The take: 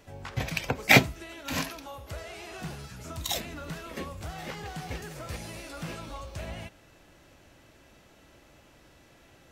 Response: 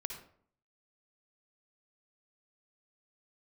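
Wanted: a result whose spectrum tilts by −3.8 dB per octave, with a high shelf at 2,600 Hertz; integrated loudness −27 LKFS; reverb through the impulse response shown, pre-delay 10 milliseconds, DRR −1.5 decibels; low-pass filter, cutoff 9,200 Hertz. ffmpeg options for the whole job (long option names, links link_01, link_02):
-filter_complex "[0:a]lowpass=9200,highshelf=frequency=2600:gain=9,asplit=2[link_01][link_02];[1:a]atrim=start_sample=2205,adelay=10[link_03];[link_02][link_03]afir=irnorm=-1:irlink=0,volume=2dB[link_04];[link_01][link_04]amix=inputs=2:normalize=0,volume=-4dB"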